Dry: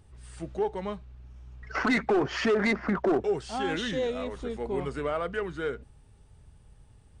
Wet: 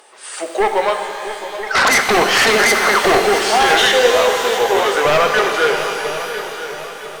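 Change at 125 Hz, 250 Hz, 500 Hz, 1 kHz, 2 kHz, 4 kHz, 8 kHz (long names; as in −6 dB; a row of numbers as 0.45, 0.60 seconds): +4.0, +4.5, +13.5, +19.5, +18.5, +22.5, +27.0 decibels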